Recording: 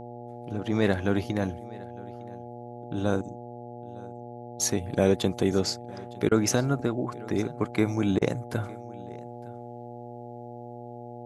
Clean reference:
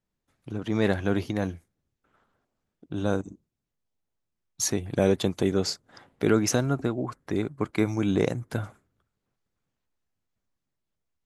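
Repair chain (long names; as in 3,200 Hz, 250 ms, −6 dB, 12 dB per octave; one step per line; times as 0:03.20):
hum removal 120.1 Hz, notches 7
repair the gap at 0:06.29/0:08.19, 23 ms
echo removal 909 ms −22 dB
level correction −6.5 dB, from 0:09.02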